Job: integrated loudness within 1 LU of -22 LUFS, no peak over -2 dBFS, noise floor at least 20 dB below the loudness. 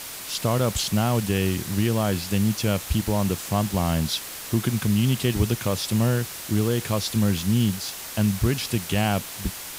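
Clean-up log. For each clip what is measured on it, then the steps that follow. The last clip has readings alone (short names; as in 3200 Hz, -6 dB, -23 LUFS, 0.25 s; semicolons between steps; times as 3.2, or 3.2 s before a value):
noise floor -37 dBFS; noise floor target -44 dBFS; loudness -24.0 LUFS; peak -10.0 dBFS; loudness target -22.0 LUFS
-> denoiser 7 dB, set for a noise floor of -37 dBFS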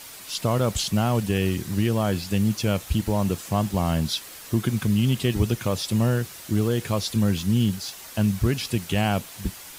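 noise floor -42 dBFS; noise floor target -45 dBFS
-> denoiser 6 dB, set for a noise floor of -42 dBFS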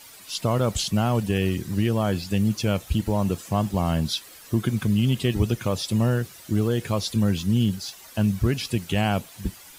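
noise floor -46 dBFS; loudness -24.5 LUFS; peak -10.5 dBFS; loudness target -22.0 LUFS
-> gain +2.5 dB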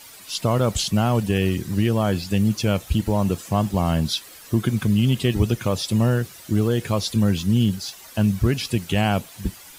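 loudness -22.0 LUFS; peak -8.0 dBFS; noise floor -44 dBFS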